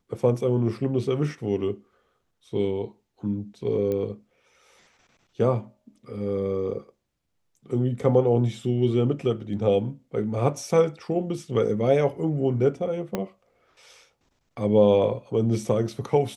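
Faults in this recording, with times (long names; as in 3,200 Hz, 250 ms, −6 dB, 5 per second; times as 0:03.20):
0:03.92: click −18 dBFS
0:13.15: click −13 dBFS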